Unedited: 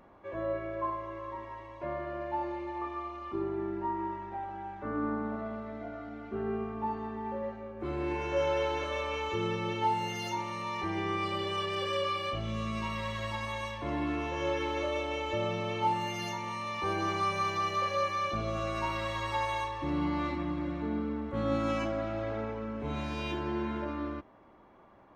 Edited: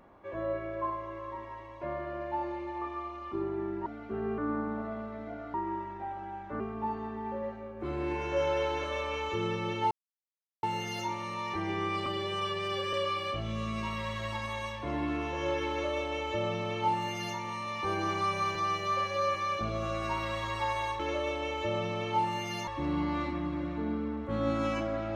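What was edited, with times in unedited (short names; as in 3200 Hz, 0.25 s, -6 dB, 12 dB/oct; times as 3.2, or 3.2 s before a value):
3.86–4.92 swap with 6.08–6.6
9.91 insert silence 0.72 s
11.34–11.92 stretch 1.5×
14.68–16.36 copy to 19.72
17.54–18.07 stretch 1.5×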